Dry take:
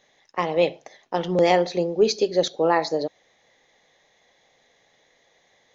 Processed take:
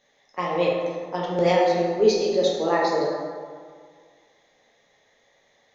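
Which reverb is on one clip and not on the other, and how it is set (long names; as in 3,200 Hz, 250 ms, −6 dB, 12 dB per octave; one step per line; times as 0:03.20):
dense smooth reverb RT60 1.9 s, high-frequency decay 0.5×, DRR −4 dB
level −5.5 dB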